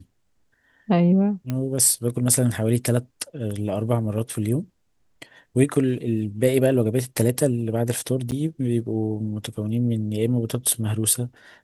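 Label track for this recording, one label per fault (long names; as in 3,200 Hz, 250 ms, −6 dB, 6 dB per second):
1.500000	1.500000	click −14 dBFS
8.310000	8.320000	drop-out 8.7 ms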